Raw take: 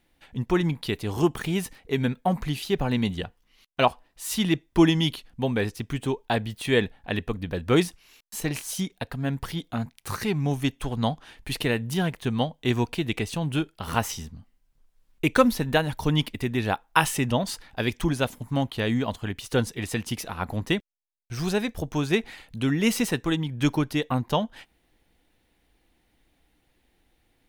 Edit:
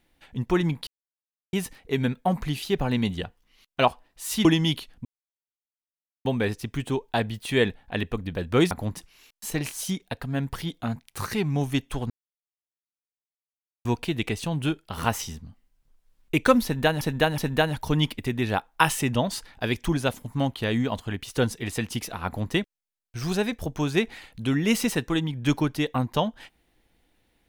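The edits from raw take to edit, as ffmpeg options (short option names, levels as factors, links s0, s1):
-filter_complex "[0:a]asplit=11[s0][s1][s2][s3][s4][s5][s6][s7][s8][s9][s10];[s0]atrim=end=0.87,asetpts=PTS-STARTPTS,afade=t=out:st=0.866:d=0.004:c=hsin[s11];[s1]atrim=start=0.87:end=1.53,asetpts=PTS-STARTPTS,volume=0[s12];[s2]atrim=start=1.53:end=4.452,asetpts=PTS-STARTPTS,afade=t=in:d=0.004:c=hsin[s13];[s3]atrim=start=4.808:end=5.41,asetpts=PTS-STARTPTS,afade=t=out:st=0.598:d=0.004:c=hsin,apad=pad_dur=1.2[s14];[s4]atrim=start=5.41:end=7.872,asetpts=PTS-STARTPTS,afade=t=in:d=0.004:c=hsin[s15];[s5]atrim=start=20.418:end=20.682[s16];[s6]atrim=start=7.868:end=11,asetpts=PTS-STARTPTS,afade=t=out:st=3.128:d=0.004:c=hsin[s17];[s7]atrim=start=11:end=12.75,asetpts=PTS-STARTPTS,volume=0[s18];[s8]atrim=start=12.75:end=15.912,asetpts=PTS-STARTPTS,afade=t=in:d=0.004:c=hsin[s19];[s9]atrim=start=15.538:end=15.912[s20];[s10]atrim=start=15.538[s21];[s11][s12][s13]concat=n=3:v=0:a=1[s22];[s14][s15]concat=n=2:v=0:a=1[s23];[s22][s23]acrossfade=d=0.004:c1=hsin:c2=hsin[s24];[s24][s16]acrossfade=d=0.004:c1=hsin:c2=hsin[s25];[s17][s18][s19]concat=n=3:v=0:a=1[s26];[s25][s26]acrossfade=d=0.004:c1=hsin:c2=hsin[s27];[s27][s20]acrossfade=d=0.004:c1=hsin:c2=hsin[s28];[s28][s21]acrossfade=d=0.004:c1=hsin:c2=hsin"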